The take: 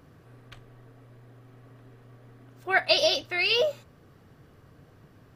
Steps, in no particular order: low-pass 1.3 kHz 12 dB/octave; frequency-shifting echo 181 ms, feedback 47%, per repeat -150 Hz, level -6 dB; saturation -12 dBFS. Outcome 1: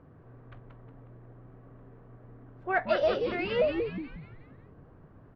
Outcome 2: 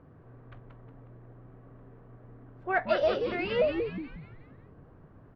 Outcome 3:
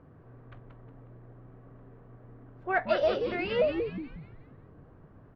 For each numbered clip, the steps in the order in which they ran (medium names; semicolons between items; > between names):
frequency-shifting echo > saturation > low-pass; saturation > frequency-shifting echo > low-pass; saturation > low-pass > frequency-shifting echo